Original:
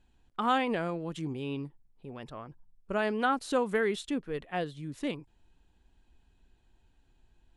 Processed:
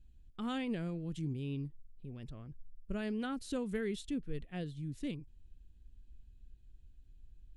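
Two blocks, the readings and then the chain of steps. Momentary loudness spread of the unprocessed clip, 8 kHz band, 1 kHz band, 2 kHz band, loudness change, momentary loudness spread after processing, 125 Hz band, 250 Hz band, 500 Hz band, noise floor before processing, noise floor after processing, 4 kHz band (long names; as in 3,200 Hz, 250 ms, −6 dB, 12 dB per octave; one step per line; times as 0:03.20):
17 LU, −6.0 dB, −17.5 dB, −13.0 dB, −8.0 dB, 14 LU, +0.5 dB, −3.5 dB, −10.5 dB, −68 dBFS, −60 dBFS, −8.0 dB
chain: guitar amp tone stack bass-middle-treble 10-0-1
level +14.5 dB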